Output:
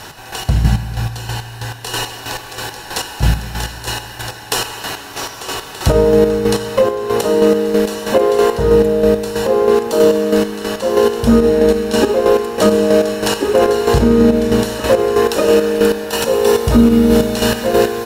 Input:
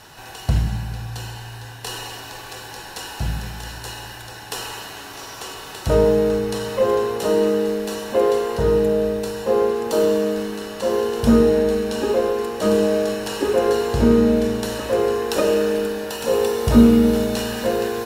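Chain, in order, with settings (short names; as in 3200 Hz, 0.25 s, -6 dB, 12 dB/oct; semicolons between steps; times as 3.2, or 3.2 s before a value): 6.46–7.24 compressor 6:1, threshold -21 dBFS, peak gain reduction 8 dB; chopper 3.1 Hz, depth 60%, duty 35%; maximiser +13 dB; gain -1 dB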